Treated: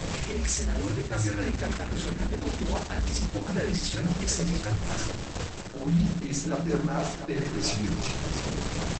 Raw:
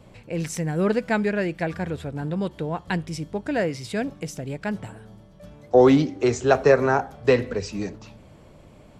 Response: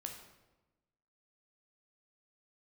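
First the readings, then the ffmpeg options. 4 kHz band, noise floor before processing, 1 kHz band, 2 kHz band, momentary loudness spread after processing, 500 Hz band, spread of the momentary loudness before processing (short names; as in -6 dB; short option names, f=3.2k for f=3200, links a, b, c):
+4.5 dB, -50 dBFS, -8.5 dB, -6.0 dB, 4 LU, -12.5 dB, 14 LU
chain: -filter_complex "[0:a]aeval=exprs='val(0)+0.5*0.0501*sgn(val(0))':c=same,equalizer=f=250:t=o:w=0.29:g=7.5,areverse,acompressor=threshold=-26dB:ratio=16,areverse,afreqshift=-100,highshelf=f=3.7k:g=6.5,aecho=1:1:344|697:0.112|0.335[a];[1:a]atrim=start_sample=2205,atrim=end_sample=6174,asetrate=61740,aresample=44100[b];[a][b]afir=irnorm=-1:irlink=0,volume=6dB" -ar 48000 -c:a libopus -b:a 10k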